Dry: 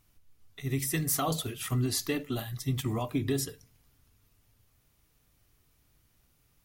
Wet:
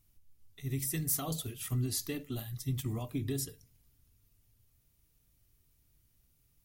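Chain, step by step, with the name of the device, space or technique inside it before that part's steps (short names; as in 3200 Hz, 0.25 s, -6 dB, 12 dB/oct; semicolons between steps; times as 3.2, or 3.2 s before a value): smiley-face EQ (low shelf 170 Hz +7 dB; bell 1100 Hz -4.5 dB 1.9 oct; high shelf 6800 Hz +7.5 dB); gain -7.5 dB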